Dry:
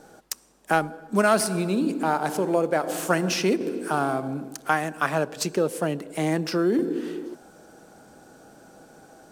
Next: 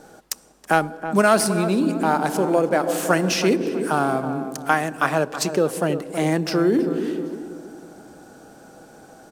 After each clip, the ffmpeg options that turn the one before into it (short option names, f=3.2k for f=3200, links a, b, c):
-filter_complex "[0:a]asplit=2[a][b];[b]adelay=323,lowpass=f=1.1k:p=1,volume=-9dB,asplit=2[c][d];[d]adelay=323,lowpass=f=1.1k:p=1,volume=0.45,asplit=2[e][f];[f]adelay=323,lowpass=f=1.1k:p=1,volume=0.45,asplit=2[g][h];[h]adelay=323,lowpass=f=1.1k:p=1,volume=0.45,asplit=2[i][j];[j]adelay=323,lowpass=f=1.1k:p=1,volume=0.45[k];[a][c][e][g][i][k]amix=inputs=6:normalize=0,volume=3.5dB"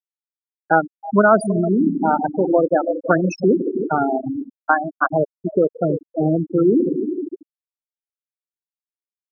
-af "afftfilt=real='re*gte(hypot(re,im),0.316)':imag='im*gte(hypot(re,im),0.316)':win_size=1024:overlap=0.75,volume=3.5dB"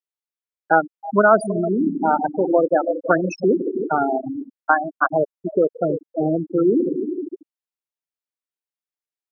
-af "bass=f=250:g=-7,treble=f=4k:g=-3"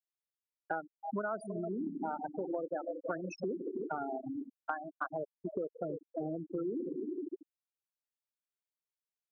-af "acompressor=threshold=-28dB:ratio=4,volume=-8dB"